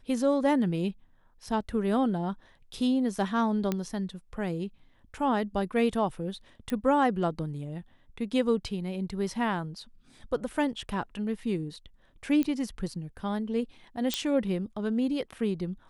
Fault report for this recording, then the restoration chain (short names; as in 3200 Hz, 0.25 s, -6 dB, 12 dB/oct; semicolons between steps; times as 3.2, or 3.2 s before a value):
3.72 pop -15 dBFS
6.7 pop -19 dBFS
12.43 pop -17 dBFS
14.14 pop -11 dBFS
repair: de-click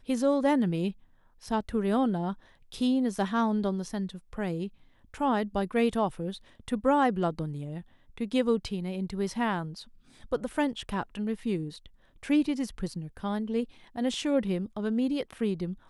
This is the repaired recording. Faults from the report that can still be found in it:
none